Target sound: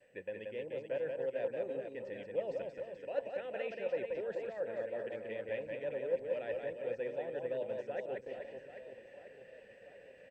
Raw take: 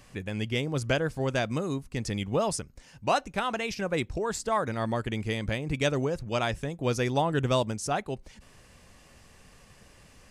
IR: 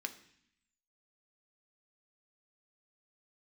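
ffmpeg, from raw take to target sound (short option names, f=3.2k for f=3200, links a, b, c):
-filter_complex "[0:a]agate=range=-33dB:threshold=-50dB:ratio=3:detection=peak,lowpass=f=3.6k:p=1,deesser=0.95,highshelf=f=2.8k:g=-8,areverse,acompressor=threshold=-40dB:ratio=16,areverse,asplit=3[a][b][c];[a]bandpass=f=530:t=q:w=8,volume=0dB[d];[b]bandpass=f=1.84k:t=q:w=8,volume=-6dB[e];[c]bandpass=f=2.48k:t=q:w=8,volume=-9dB[f];[d][e][f]amix=inputs=3:normalize=0,asplit=2[g][h];[h]aecho=0:1:180|432|784.8|1279|1970:0.631|0.398|0.251|0.158|0.1[i];[g][i]amix=inputs=2:normalize=0,volume=13.5dB" -ar 32000 -c:a mp2 -b:a 64k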